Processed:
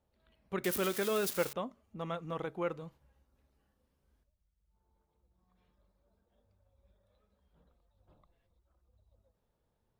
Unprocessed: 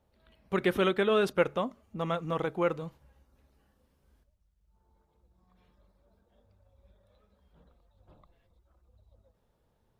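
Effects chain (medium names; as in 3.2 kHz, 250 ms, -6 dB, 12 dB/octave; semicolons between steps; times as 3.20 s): 0.64–1.53 s: zero-crossing glitches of -21 dBFS; trim -7 dB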